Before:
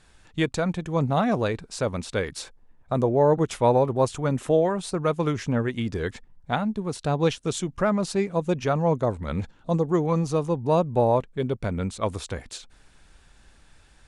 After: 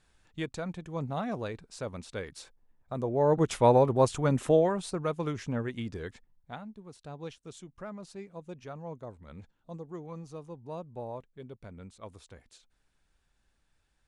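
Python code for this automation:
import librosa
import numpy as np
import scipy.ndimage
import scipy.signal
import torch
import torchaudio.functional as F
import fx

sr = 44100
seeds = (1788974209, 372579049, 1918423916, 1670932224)

y = fx.gain(x, sr, db=fx.line((2.97, -11.0), (3.47, -1.5), (4.47, -1.5), (5.14, -8.0), (5.8, -8.0), (6.75, -19.0)))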